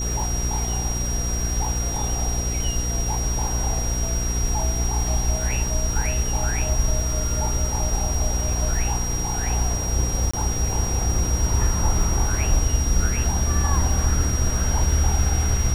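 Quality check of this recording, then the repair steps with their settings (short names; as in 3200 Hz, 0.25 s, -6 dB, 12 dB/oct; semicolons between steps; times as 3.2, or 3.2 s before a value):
crackle 27/s -28 dBFS
hum 60 Hz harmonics 8 -26 dBFS
tone 5700 Hz -28 dBFS
10.31–10.34 gap 25 ms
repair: de-click; notch 5700 Hz, Q 30; de-hum 60 Hz, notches 8; interpolate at 10.31, 25 ms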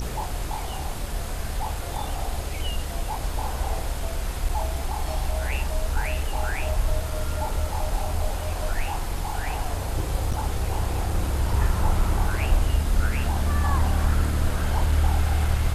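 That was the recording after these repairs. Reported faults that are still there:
none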